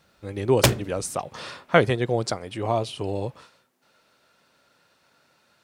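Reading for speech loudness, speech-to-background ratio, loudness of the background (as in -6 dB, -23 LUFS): -26.0 LUFS, -2.5 dB, -23.5 LUFS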